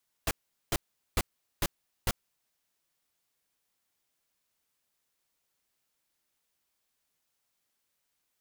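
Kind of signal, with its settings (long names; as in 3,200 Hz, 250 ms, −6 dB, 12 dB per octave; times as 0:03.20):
noise bursts pink, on 0.04 s, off 0.41 s, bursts 5, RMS −27 dBFS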